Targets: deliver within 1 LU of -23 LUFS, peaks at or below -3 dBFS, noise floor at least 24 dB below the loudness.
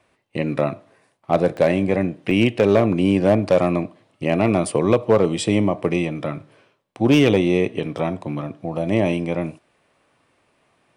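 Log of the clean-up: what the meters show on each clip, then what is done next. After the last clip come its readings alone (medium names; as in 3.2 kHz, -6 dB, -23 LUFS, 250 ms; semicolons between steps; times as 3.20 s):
clipped samples 0.7%; clipping level -7.5 dBFS; dropouts 2; longest dropout 1.1 ms; loudness -20.0 LUFS; peak level -7.5 dBFS; loudness target -23.0 LUFS
-> clip repair -7.5 dBFS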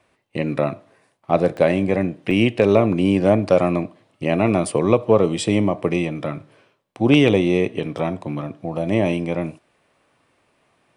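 clipped samples 0.0%; dropouts 2; longest dropout 1.1 ms
-> interpolate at 1.57/2.31 s, 1.1 ms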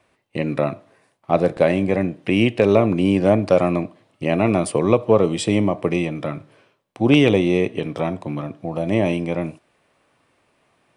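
dropouts 0; loudness -20.0 LUFS; peak level -1.0 dBFS; loudness target -23.0 LUFS
-> trim -3 dB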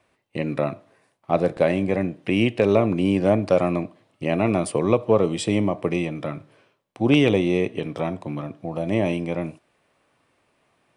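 loudness -23.0 LUFS; peak level -4.0 dBFS; noise floor -68 dBFS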